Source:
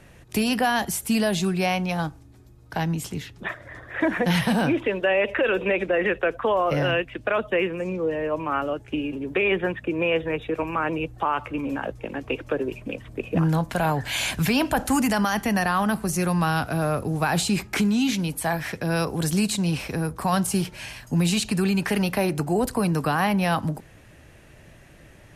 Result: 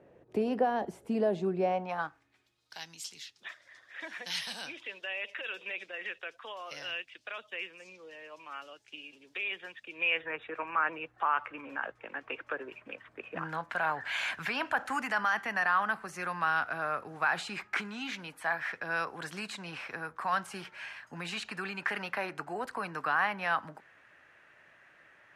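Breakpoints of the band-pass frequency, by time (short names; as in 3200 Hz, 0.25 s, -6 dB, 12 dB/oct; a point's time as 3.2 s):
band-pass, Q 1.8
1.7 s 470 Hz
1.98 s 1200 Hz
2.77 s 4900 Hz
9.81 s 4900 Hz
10.3 s 1500 Hz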